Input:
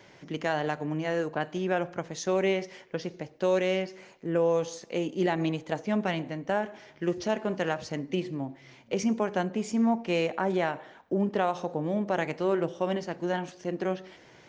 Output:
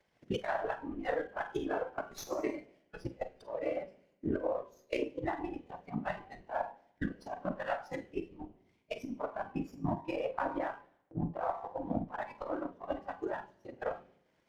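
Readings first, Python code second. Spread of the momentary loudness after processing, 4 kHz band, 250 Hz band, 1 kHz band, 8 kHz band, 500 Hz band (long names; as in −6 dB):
9 LU, −13.0 dB, −10.0 dB, −5.5 dB, can't be measured, −9.0 dB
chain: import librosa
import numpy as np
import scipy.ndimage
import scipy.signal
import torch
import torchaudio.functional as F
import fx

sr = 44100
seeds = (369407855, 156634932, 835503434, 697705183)

y = fx.whisperise(x, sr, seeds[0])
y = fx.env_lowpass_down(y, sr, base_hz=2000.0, full_db=-23.0)
y = fx.hum_notches(y, sr, base_hz=50, count=8)
y = fx.transient(y, sr, attack_db=11, sustain_db=-8)
y = fx.over_compress(y, sr, threshold_db=-23.0, ratio=-0.5)
y = fx.rev_schroeder(y, sr, rt60_s=0.85, comb_ms=33, drr_db=6.5)
y = fx.noise_reduce_blind(y, sr, reduce_db=14)
y = fx.running_max(y, sr, window=3)
y = F.gain(torch.from_numpy(y), -9.0).numpy()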